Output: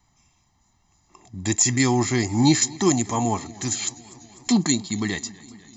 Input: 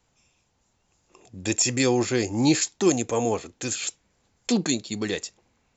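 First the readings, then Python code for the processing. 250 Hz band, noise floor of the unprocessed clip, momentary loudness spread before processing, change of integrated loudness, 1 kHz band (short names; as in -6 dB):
+3.0 dB, -70 dBFS, 11 LU, +2.5 dB, +5.0 dB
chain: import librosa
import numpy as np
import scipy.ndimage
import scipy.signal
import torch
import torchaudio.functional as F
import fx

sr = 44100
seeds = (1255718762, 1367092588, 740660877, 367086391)

y = fx.notch(x, sr, hz=2900.0, q=6.4)
y = y + 0.85 * np.pad(y, (int(1.0 * sr / 1000.0), 0))[:len(y)]
y = fx.echo_warbled(y, sr, ms=248, feedback_pct=73, rate_hz=2.8, cents=68, wet_db=-22.0)
y = y * 10.0 ** (1.5 / 20.0)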